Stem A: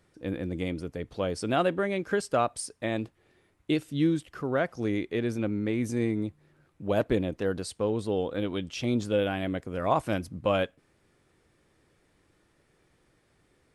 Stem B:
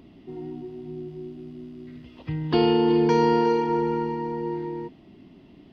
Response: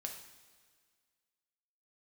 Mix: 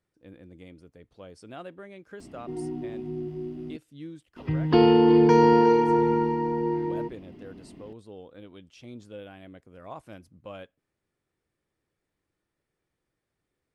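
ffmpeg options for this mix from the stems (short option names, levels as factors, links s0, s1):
-filter_complex "[0:a]volume=0.158[s0];[1:a]equalizer=f=3700:t=o:w=0.91:g=-6.5,adelay=2200,volume=1.33,asplit=3[s1][s2][s3];[s1]atrim=end=3.77,asetpts=PTS-STARTPTS,afade=t=out:st=3.766:d=0.004:c=hsin[s4];[s2]atrim=start=3.77:end=4.36,asetpts=PTS-STARTPTS,volume=0[s5];[s3]atrim=start=4.36,asetpts=PTS-STARTPTS,afade=t=in:d=0.004:c=hsin[s6];[s4][s5][s6]concat=n=3:v=0:a=1[s7];[s0][s7]amix=inputs=2:normalize=0"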